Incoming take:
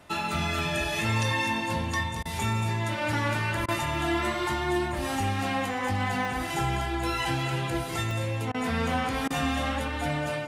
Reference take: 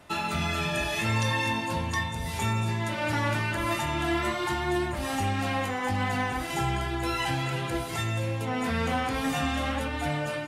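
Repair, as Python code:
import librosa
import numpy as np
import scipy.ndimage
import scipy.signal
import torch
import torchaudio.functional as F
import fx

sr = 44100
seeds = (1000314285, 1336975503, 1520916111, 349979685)

y = fx.fix_interpolate(x, sr, at_s=(0.59, 6.25, 8.11), length_ms=1.1)
y = fx.fix_interpolate(y, sr, at_s=(2.23, 3.66, 8.52, 9.28), length_ms=22.0)
y = fx.fix_echo_inverse(y, sr, delay_ms=227, level_db=-11.0)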